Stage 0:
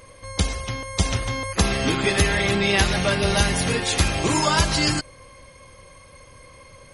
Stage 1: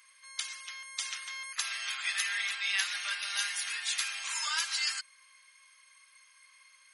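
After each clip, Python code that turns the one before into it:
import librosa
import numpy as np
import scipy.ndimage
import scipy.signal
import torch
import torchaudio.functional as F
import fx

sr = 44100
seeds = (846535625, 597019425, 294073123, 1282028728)

y = scipy.signal.sosfilt(scipy.signal.butter(4, 1400.0, 'highpass', fs=sr, output='sos'), x)
y = y * librosa.db_to_amplitude(-8.0)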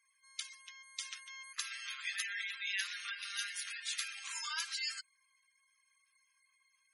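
y = fx.law_mismatch(x, sr, coded='A')
y = fx.highpass(y, sr, hz=290.0, slope=6)
y = fx.spec_gate(y, sr, threshold_db=-15, keep='strong')
y = y * librosa.db_to_amplitude(-4.5)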